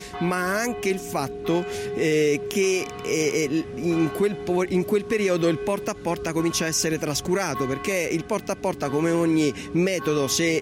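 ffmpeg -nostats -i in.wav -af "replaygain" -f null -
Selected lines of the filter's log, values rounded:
track_gain = +4.9 dB
track_peak = 0.178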